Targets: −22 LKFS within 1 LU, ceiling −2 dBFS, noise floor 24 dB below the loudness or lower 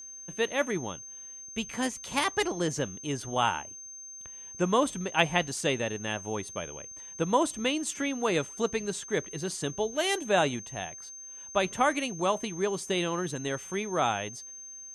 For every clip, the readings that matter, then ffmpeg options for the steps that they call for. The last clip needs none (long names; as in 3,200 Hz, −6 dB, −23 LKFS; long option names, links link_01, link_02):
interfering tone 6,300 Hz; level of the tone −42 dBFS; integrated loudness −30.0 LKFS; sample peak −8.0 dBFS; target loudness −22.0 LKFS
→ -af "bandreject=frequency=6300:width=30"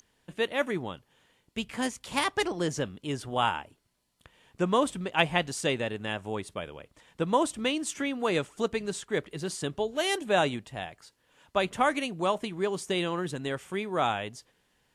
interfering tone none found; integrated loudness −30.0 LKFS; sample peak −8.0 dBFS; target loudness −22.0 LKFS
→ -af "volume=8dB,alimiter=limit=-2dB:level=0:latency=1"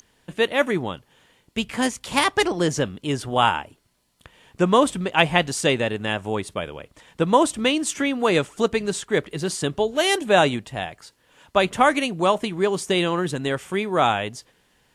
integrated loudness −22.0 LKFS; sample peak −2.0 dBFS; background noise floor −64 dBFS